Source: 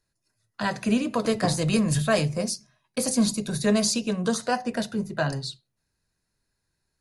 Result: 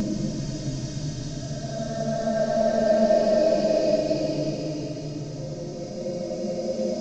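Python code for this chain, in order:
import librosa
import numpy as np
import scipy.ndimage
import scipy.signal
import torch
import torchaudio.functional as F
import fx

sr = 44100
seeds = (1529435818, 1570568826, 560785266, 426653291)

y = fx.delta_mod(x, sr, bps=32000, step_db=-31.0)
y = fx.band_shelf(y, sr, hz=1900.0, db=-15.0, octaves=2.5)
y = fx.paulstretch(y, sr, seeds[0], factor=13.0, window_s=0.25, from_s=1.89)
y = y + 0.71 * np.pad(y, (int(3.2 * sr / 1000.0), 0))[:len(y)]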